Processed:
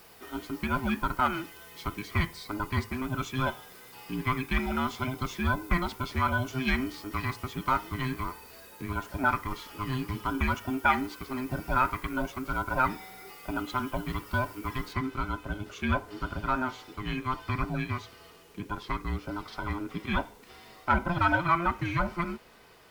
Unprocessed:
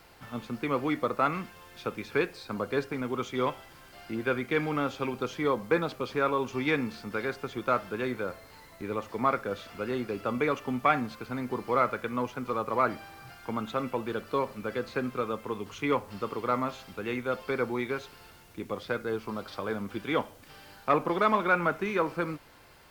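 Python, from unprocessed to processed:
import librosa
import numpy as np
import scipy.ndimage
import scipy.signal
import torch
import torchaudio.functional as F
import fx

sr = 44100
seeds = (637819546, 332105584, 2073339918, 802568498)

y = fx.band_invert(x, sr, width_hz=500)
y = fx.high_shelf(y, sr, hz=8500.0, db=fx.steps((0.0, 12.0), (14.92, -2.0)))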